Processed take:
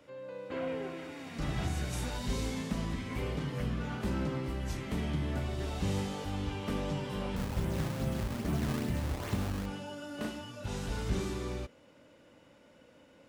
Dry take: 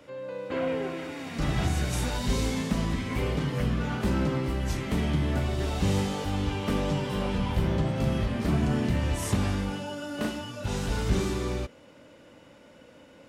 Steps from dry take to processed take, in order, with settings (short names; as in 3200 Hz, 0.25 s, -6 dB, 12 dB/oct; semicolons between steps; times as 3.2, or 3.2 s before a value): 7.36–9.66 decimation with a swept rate 18×, swing 160% 2.4 Hz; gain -7 dB